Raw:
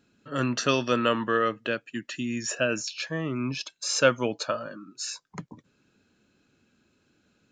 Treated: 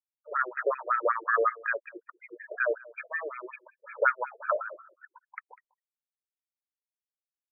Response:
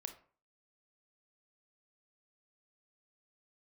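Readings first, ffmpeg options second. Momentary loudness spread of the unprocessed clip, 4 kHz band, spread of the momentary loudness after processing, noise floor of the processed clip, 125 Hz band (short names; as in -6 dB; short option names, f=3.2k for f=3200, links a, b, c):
12 LU, under -40 dB, 21 LU, under -85 dBFS, under -40 dB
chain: -filter_complex "[0:a]highpass=360,lowpass=2.3k,asplit=2[a][b];[b]alimiter=limit=-18.5dB:level=0:latency=1:release=99,volume=0.5dB[c];[a][c]amix=inputs=2:normalize=0,afftfilt=real='re*gte(hypot(re,im),0.0112)':imag='im*gte(hypot(re,im),0.0112)':win_size=1024:overlap=0.75,aemphasis=mode=production:type=75fm,aecho=1:1:198:0.075,afftfilt=real='re*between(b*sr/1024,480*pow(1800/480,0.5+0.5*sin(2*PI*5.4*pts/sr))/1.41,480*pow(1800/480,0.5+0.5*sin(2*PI*5.4*pts/sr))*1.41)':imag='im*between(b*sr/1024,480*pow(1800/480,0.5+0.5*sin(2*PI*5.4*pts/sr))/1.41,480*pow(1800/480,0.5+0.5*sin(2*PI*5.4*pts/sr))*1.41)':win_size=1024:overlap=0.75"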